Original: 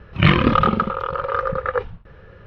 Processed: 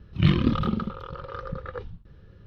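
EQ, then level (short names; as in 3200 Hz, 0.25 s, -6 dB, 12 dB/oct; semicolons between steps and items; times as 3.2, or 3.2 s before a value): band shelf 1100 Hz -11.5 dB 2.9 oct; -4.0 dB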